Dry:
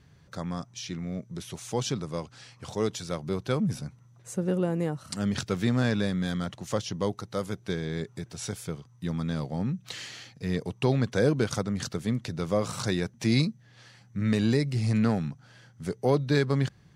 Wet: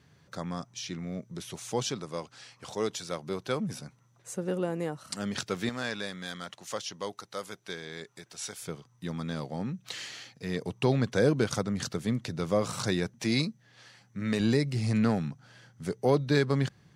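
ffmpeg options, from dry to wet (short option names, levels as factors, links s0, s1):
-af "asetnsamples=n=441:p=0,asendcmd='1.86 highpass f 350;5.69 highpass f 990;8.62 highpass f 260;10.61 highpass f 100;13.19 highpass f 270;14.4 highpass f 110',highpass=f=170:p=1"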